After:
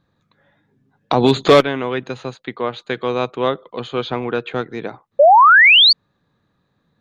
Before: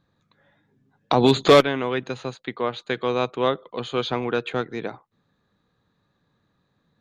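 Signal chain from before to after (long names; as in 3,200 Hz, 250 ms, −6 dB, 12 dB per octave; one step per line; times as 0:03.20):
0:03.87–0:04.53: high-frequency loss of the air 70 metres
0:05.19–0:05.93: sound drawn into the spectrogram rise 540–4,700 Hz −11 dBFS
high-shelf EQ 5,500 Hz −4.5 dB
level +3 dB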